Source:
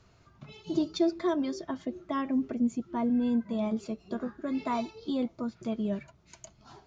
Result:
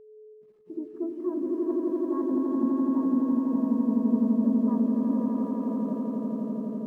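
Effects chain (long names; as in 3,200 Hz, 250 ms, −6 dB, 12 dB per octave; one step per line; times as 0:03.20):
stylus tracing distortion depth 0.35 ms
low-pass that shuts in the quiet parts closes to 520 Hz, open at −24.5 dBFS
Chebyshev band-pass filter 190–1,500 Hz, order 3
low-shelf EQ 230 Hz −3 dB
in parallel at 0 dB: downward compressor 16 to 1, threshold −36 dBFS, peak gain reduction 14.5 dB
on the sum: notch comb filter 720 Hz
bit reduction 8 bits
pitch-shifted copies added −4 semitones −12 dB
steady tone 430 Hz −36 dBFS
on a send: echo that builds up and dies away 84 ms, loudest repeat 8, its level −3.5 dB
on the sum: every bin expanded away from the loudest bin 1.5 to 1
level −4.5 dB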